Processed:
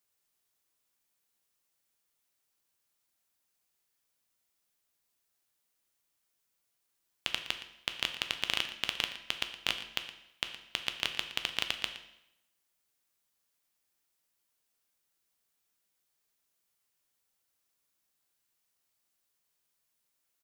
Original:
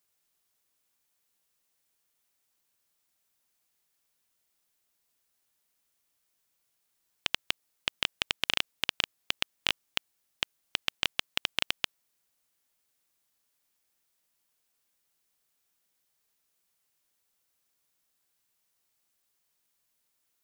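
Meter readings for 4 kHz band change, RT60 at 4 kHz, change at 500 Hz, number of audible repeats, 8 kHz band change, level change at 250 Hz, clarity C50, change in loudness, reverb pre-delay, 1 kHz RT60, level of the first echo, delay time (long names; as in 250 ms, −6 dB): −2.5 dB, 0.75 s, −2.5 dB, 1, −2.5 dB, −2.5 dB, 9.0 dB, −2.5 dB, 9 ms, 0.80 s, −14.5 dB, 117 ms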